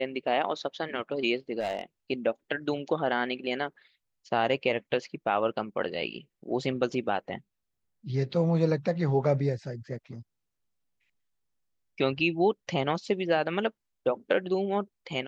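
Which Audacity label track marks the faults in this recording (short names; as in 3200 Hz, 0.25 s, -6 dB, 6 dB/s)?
1.590000	1.810000	clipped -25 dBFS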